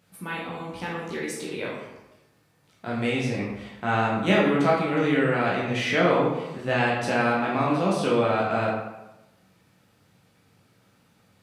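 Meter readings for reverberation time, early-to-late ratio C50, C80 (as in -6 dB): 1.0 s, 1.0 dB, 4.5 dB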